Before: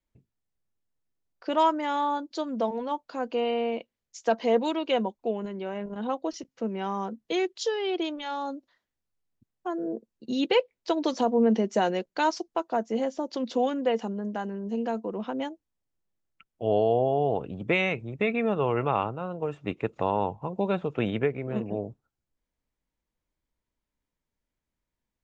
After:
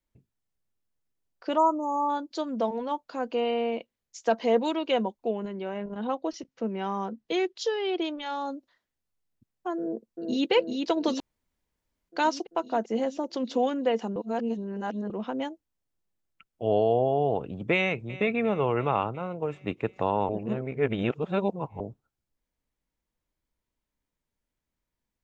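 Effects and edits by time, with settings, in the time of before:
0:01.57–0:02.09: time-frequency box erased 1,300–5,900 Hz
0:05.31–0:08.26: low-pass filter 6,300 Hz
0:09.78–0:10.51: delay throw 390 ms, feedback 70%, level −4 dB
0:11.20–0:12.09: fill with room tone
0:14.16–0:15.10: reverse
0:17.74–0:18.21: delay throw 350 ms, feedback 65%, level −17 dB
0:20.29–0:21.80: reverse

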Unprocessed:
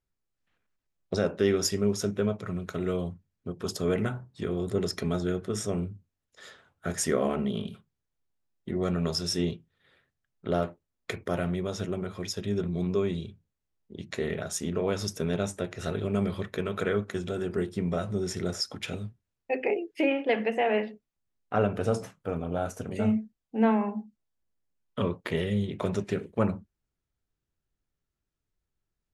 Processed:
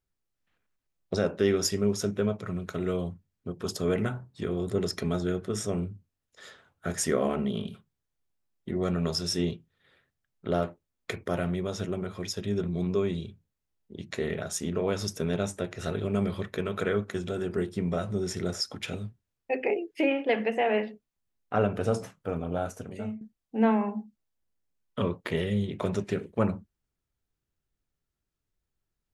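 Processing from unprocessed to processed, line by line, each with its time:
0:22.57–0:23.21: fade out, to −16.5 dB

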